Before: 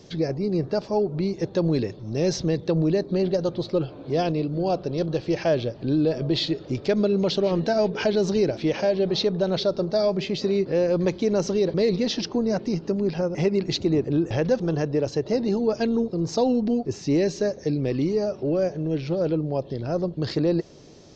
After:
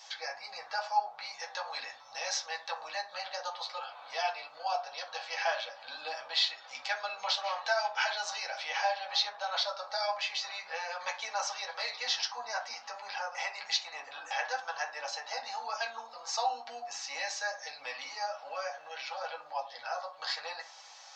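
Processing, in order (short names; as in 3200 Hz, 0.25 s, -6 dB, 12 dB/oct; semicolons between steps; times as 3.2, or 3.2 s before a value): elliptic high-pass 770 Hz, stop band 50 dB; in parallel at 0 dB: compressor, threshold -46 dBFS, peak gain reduction 21 dB; on the sum: reverb RT60 0.40 s, pre-delay 3 ms, DRR -2.5 dB; gain -3.5 dB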